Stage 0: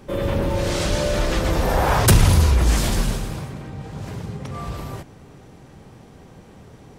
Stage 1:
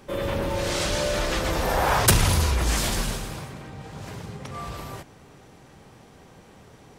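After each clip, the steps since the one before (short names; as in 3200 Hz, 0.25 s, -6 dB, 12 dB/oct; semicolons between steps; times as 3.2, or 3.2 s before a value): low shelf 470 Hz -7.5 dB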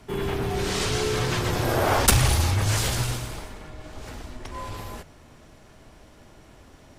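frequency shift -160 Hz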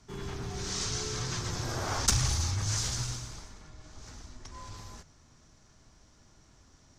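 EQ curve 150 Hz 0 dB, 570 Hz -8 dB, 1200 Hz -1 dB, 2800 Hz -5 dB, 6200 Hz +10 dB, 11000 Hz -11 dB; gain -8.5 dB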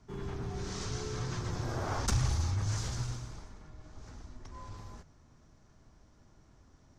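high shelf 2100 Hz -11.5 dB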